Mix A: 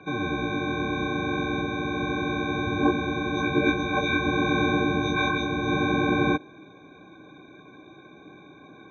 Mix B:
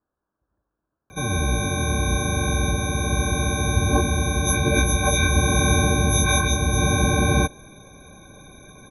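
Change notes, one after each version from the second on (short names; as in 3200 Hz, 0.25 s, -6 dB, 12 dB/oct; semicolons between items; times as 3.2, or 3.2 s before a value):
background: entry +1.10 s; master: remove speaker cabinet 200–3200 Hz, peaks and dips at 220 Hz -5 dB, 310 Hz +8 dB, 550 Hz -7 dB, 830 Hz -3 dB, 2000 Hz -5 dB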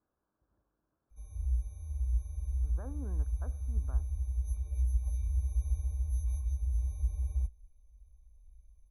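background: add inverse Chebyshev band-stop 110–3600 Hz, stop band 40 dB; master: add air absorption 440 m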